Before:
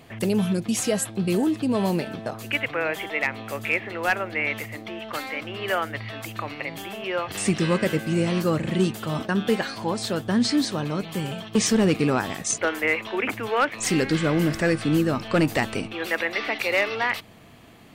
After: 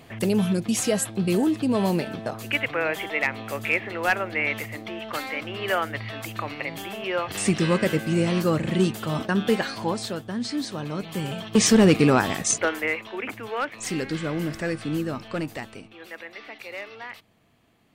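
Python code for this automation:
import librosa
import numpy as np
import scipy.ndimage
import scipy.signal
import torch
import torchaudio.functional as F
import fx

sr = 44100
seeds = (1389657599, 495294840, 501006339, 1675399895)

y = fx.gain(x, sr, db=fx.line((9.88, 0.5), (10.34, -8.5), (11.74, 4.0), (12.41, 4.0), (13.08, -6.0), (15.16, -6.0), (15.83, -14.0)))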